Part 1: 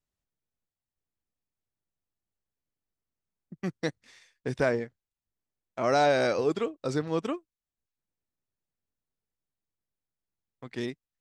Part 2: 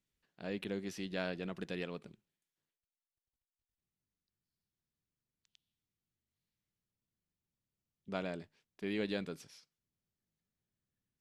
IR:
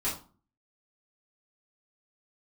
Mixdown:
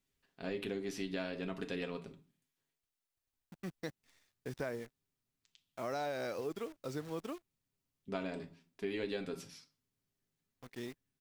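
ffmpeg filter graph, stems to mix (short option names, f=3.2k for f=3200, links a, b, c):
-filter_complex "[0:a]acrusher=bits=8:dc=4:mix=0:aa=0.000001,volume=-10.5dB[a];[1:a]aecho=1:1:7.4:0.46,volume=1dB,asplit=2[b][c];[c]volume=-12.5dB[d];[2:a]atrim=start_sample=2205[e];[d][e]afir=irnorm=-1:irlink=0[f];[a][b][f]amix=inputs=3:normalize=0,acompressor=threshold=-35dB:ratio=4"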